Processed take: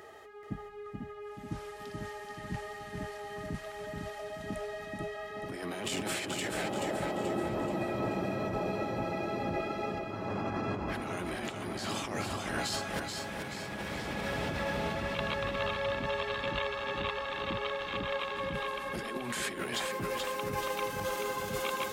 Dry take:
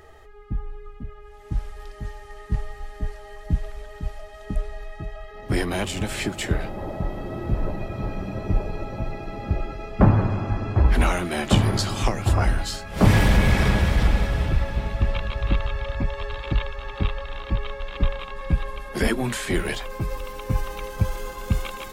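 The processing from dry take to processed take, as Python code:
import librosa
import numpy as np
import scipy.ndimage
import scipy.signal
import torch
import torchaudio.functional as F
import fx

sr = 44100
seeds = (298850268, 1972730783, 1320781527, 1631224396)

p1 = scipy.signal.sosfilt(scipy.signal.butter(2, 200.0, 'highpass', fs=sr, output='sos'), x)
p2 = fx.over_compress(p1, sr, threshold_db=-33.0, ratio=-1.0)
p3 = p2 + fx.echo_feedback(p2, sr, ms=431, feedback_pct=48, wet_db=-5, dry=0)
y = p3 * 10.0 ** (-3.5 / 20.0)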